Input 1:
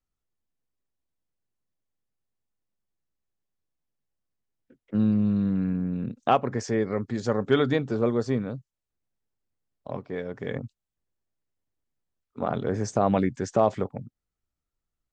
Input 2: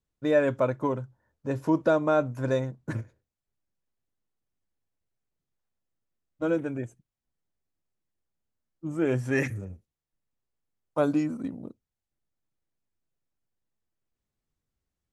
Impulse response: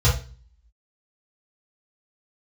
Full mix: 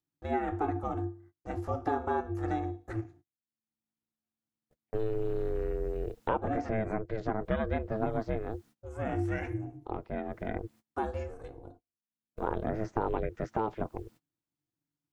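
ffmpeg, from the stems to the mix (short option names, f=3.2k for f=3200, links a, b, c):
-filter_complex "[0:a]lowpass=3.6k,volume=0dB[a];[1:a]bass=f=250:g=-12,treble=f=4k:g=0,acompressor=mode=upward:threshold=-43dB:ratio=2.5,volume=-2.5dB,asplit=2[b][c];[c]volume=-21dB[d];[2:a]atrim=start_sample=2205[e];[d][e]afir=irnorm=-1:irlink=0[f];[a][b][f]amix=inputs=3:normalize=0,agate=range=-29dB:threshold=-51dB:ratio=16:detection=peak,acrossover=split=880|2300[g][h][i];[g]acompressor=threshold=-25dB:ratio=4[j];[h]acompressor=threshold=-37dB:ratio=4[k];[i]acompressor=threshold=-59dB:ratio=4[l];[j][k][l]amix=inputs=3:normalize=0,aeval=exprs='val(0)*sin(2*PI*220*n/s)':c=same"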